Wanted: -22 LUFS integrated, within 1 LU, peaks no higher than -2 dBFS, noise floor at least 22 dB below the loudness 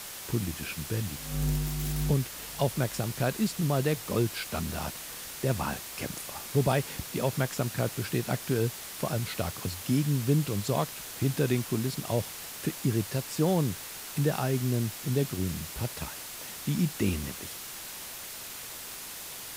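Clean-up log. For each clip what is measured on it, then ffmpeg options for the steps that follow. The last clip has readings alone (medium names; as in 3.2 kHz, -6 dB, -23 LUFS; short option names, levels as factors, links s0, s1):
noise floor -42 dBFS; noise floor target -53 dBFS; loudness -31.0 LUFS; peak level -12.0 dBFS; loudness target -22.0 LUFS
-> -af "afftdn=nr=11:nf=-42"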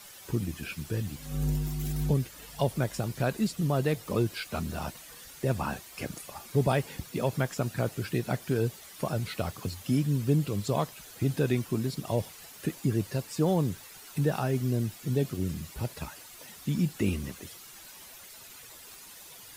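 noise floor -49 dBFS; noise floor target -53 dBFS
-> -af "afftdn=nr=6:nf=-49"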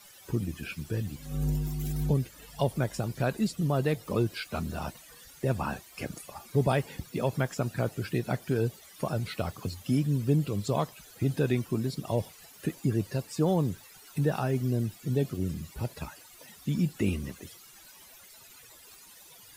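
noise floor -53 dBFS; loudness -31.0 LUFS; peak level -12.5 dBFS; loudness target -22.0 LUFS
-> -af "volume=2.82"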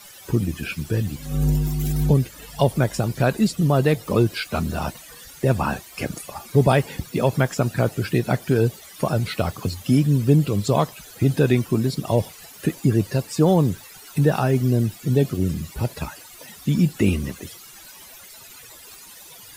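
loudness -22.0 LUFS; peak level -3.5 dBFS; noise floor -44 dBFS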